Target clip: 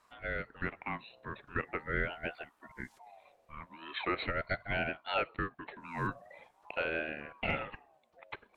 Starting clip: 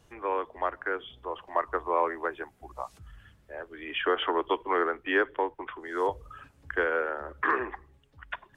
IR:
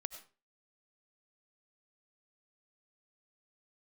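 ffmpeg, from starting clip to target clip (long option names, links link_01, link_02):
-af "aeval=exprs='val(0)*sin(2*PI*840*n/s+840*0.3/0.42*sin(2*PI*0.42*n/s))':channel_layout=same,volume=-4.5dB"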